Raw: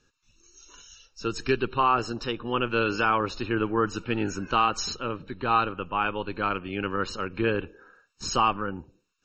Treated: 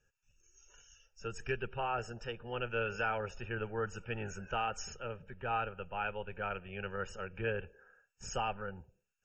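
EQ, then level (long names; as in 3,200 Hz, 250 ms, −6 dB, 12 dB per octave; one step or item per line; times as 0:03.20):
phaser with its sweep stopped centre 1,100 Hz, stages 6
notch filter 2,100 Hz, Q 5.9
notch filter 4,300 Hz, Q 7.2
−6.0 dB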